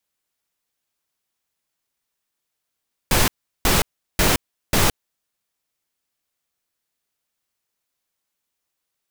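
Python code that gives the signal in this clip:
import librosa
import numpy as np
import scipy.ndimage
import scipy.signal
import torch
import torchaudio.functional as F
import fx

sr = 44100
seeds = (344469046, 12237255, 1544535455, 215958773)

y = fx.noise_burst(sr, seeds[0], colour='pink', on_s=0.17, off_s=0.37, bursts=4, level_db=-16.5)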